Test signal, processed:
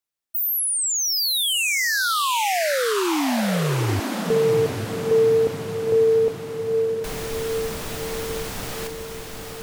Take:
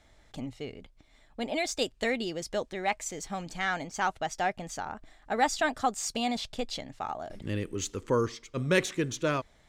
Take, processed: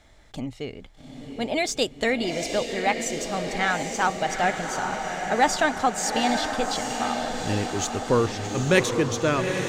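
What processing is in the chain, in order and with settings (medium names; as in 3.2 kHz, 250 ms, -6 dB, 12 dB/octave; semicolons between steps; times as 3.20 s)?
echo that smears into a reverb 819 ms, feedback 62%, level -5.5 dB; trim +5.5 dB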